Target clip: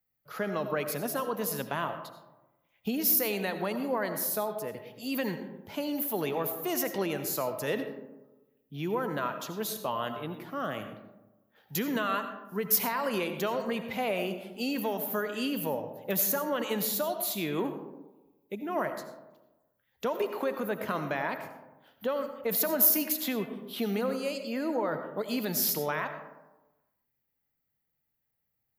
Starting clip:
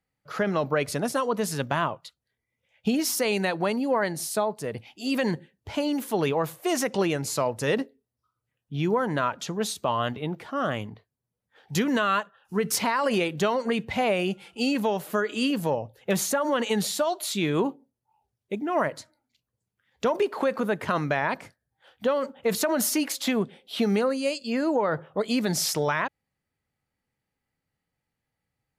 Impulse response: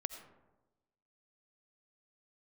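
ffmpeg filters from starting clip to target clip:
-filter_complex "[0:a]acrossover=split=130|4000[link_01][link_02][link_03];[link_01]acompressor=threshold=-55dB:ratio=6[link_04];[link_03]aexciter=amount=14:drive=2.5:freq=12000[link_05];[link_04][link_02][link_05]amix=inputs=3:normalize=0[link_06];[1:a]atrim=start_sample=2205[link_07];[link_06][link_07]afir=irnorm=-1:irlink=0,volume=-5dB"

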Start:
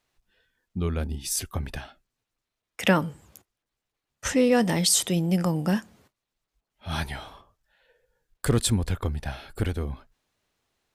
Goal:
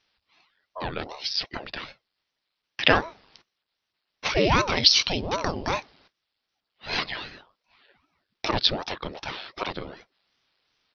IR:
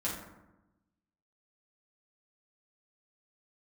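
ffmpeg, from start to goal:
-af "aemphasis=mode=production:type=riaa,aresample=11025,aresample=44100,aeval=exprs='val(0)*sin(2*PI*440*n/s+440*0.9/2.6*sin(2*PI*2.6*n/s))':channel_layout=same,volume=5.5dB"

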